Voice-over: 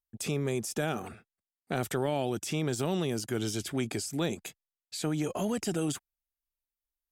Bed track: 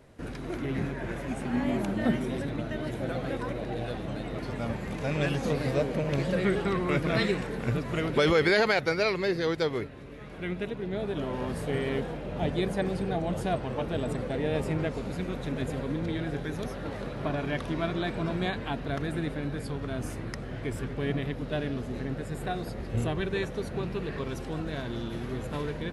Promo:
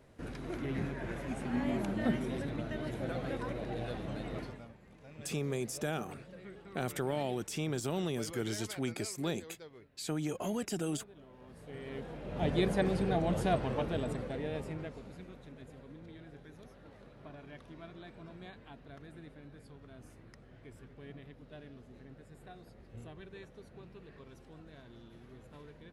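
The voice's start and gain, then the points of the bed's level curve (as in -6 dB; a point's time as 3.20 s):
5.05 s, -4.5 dB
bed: 4.40 s -5 dB
4.73 s -23.5 dB
11.37 s -23.5 dB
12.55 s -1 dB
13.66 s -1 dB
15.58 s -19.5 dB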